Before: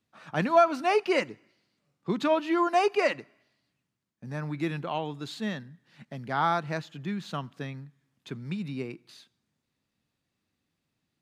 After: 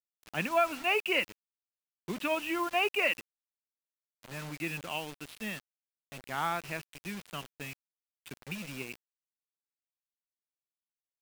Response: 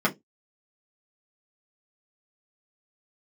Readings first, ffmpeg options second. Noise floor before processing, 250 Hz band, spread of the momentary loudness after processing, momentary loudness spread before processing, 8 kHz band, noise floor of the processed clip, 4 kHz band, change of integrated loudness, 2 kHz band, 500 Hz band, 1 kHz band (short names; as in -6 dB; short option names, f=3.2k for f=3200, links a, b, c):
-82 dBFS, -8.5 dB, 17 LU, 17 LU, +2.5 dB, under -85 dBFS, +2.0 dB, -4.5 dB, +1.5 dB, -8.0 dB, -7.0 dB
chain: -af "lowpass=f=2.7k:t=q:w=6.8,aeval=exprs='sgn(val(0))*max(abs(val(0))-0.00335,0)':c=same,acrusher=bits=5:mix=0:aa=0.000001,volume=-8dB"